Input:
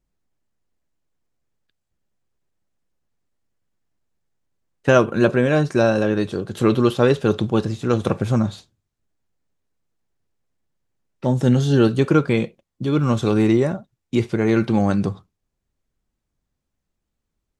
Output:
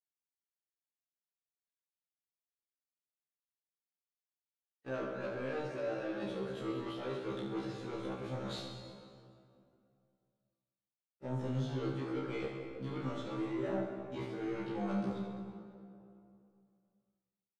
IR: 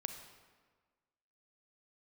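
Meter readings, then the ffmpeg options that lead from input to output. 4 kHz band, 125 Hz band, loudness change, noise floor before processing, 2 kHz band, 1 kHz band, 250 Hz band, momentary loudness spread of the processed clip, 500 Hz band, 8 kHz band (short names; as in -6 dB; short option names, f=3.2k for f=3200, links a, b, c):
-16.0 dB, -21.0 dB, -20.0 dB, -79 dBFS, -19.5 dB, -17.5 dB, -20.0 dB, 13 LU, -19.5 dB, -21.5 dB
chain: -filter_complex "[0:a]highpass=f=390:p=1,agate=range=-33dB:threshold=-39dB:ratio=3:detection=peak,acrossover=split=6000[a][b];[b]acompressor=threshold=-51dB:ratio=4:attack=1:release=60[c];[a][c]amix=inputs=2:normalize=0,highshelf=f=3.6k:g=-10,bandreject=f=1.1k:w=8.7,alimiter=limit=-13.5dB:level=0:latency=1:release=399,areverse,acompressor=threshold=-37dB:ratio=6,areverse,asoftclip=type=tanh:threshold=-36.5dB,aecho=1:1:30|72|130.8|213.1|328.4:0.631|0.398|0.251|0.158|0.1[d];[1:a]atrim=start_sample=2205,asetrate=23373,aresample=44100[e];[d][e]afir=irnorm=-1:irlink=0,afftfilt=real='re*1.73*eq(mod(b,3),0)':imag='im*1.73*eq(mod(b,3),0)':win_size=2048:overlap=0.75,volume=3dB"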